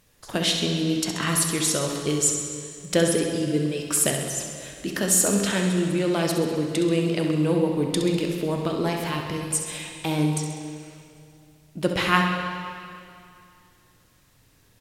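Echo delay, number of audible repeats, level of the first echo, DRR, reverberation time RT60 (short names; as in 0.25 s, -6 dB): 66 ms, 2, -8.0 dB, 1.5 dB, 2.5 s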